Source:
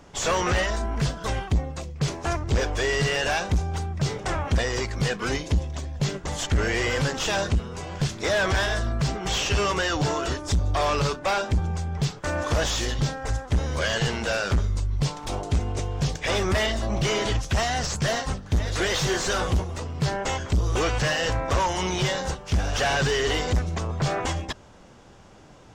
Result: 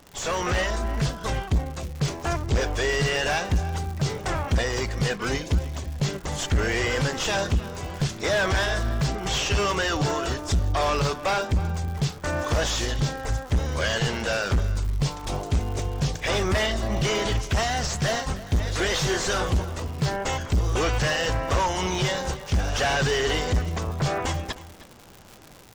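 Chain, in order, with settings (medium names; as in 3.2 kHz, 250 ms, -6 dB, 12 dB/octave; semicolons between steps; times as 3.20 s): level rider gain up to 4 dB; crackle 170 per s -29 dBFS; echo from a far wall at 53 m, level -16 dB; trim -4 dB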